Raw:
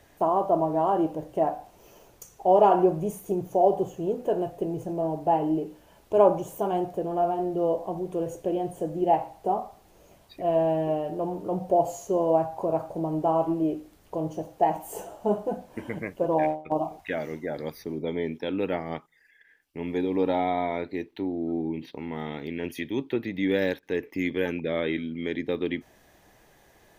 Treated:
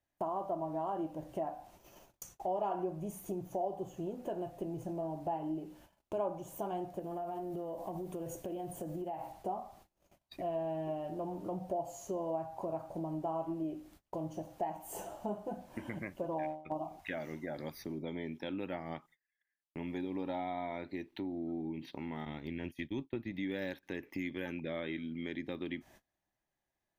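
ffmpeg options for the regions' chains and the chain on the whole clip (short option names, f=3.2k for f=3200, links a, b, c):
-filter_complex "[0:a]asettb=1/sr,asplit=3[a][b][c];[a]atrim=end=6.994[d];[b]atrim=start=6.99:end=9.32,asetpts=PTS-STARTPTS,afade=t=in:d=0.004:c=qsin,afade=t=out:st=2.326:d=0.004:c=qsin,highshelf=f=11k:g=11.5,acompressor=threshold=-29dB:ratio=6:attack=3.2:release=140:knee=1:detection=peak[e];[c]atrim=start=9.316[f];[d][e]acrossfade=d=0.004:c1=hsin:c2=qsin[g];[g][f]acrossfade=d=0.004:c1=qsin:c2=hsin,asettb=1/sr,asplit=3[h][i][j];[h]atrim=end=22.254[k];[i]atrim=start=22.25:end=23.32,asetpts=PTS-STARTPTS,afade=t=in:d=0.004:c=qsin,afade=t=out:st=1.066:d=0.004:c=qsin,agate=range=-33dB:threshold=-33dB:ratio=3:release=100:detection=peak,lowshelf=f=110:g=11[l];[j]atrim=start=23.316[m];[k][l]acrossfade=d=0.004:c1=hsin:c2=qsin[n];[n][m]acrossfade=d=0.004:c1=qsin:c2=hsin,agate=range=-28dB:threshold=-52dB:ratio=16:detection=peak,equalizer=f=450:w=7.8:g=-14,acompressor=threshold=-37dB:ratio=2.5,volume=-2dB"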